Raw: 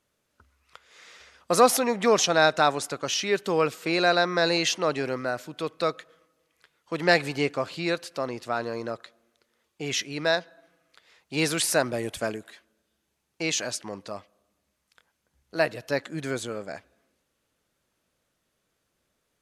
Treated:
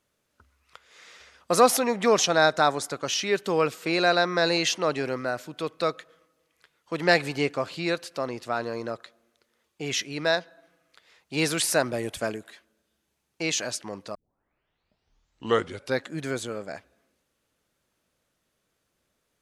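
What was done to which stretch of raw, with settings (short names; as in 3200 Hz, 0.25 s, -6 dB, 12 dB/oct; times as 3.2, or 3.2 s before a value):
2.35–2.93 bell 2700 Hz -9 dB 0.25 oct
14.15 tape start 1.93 s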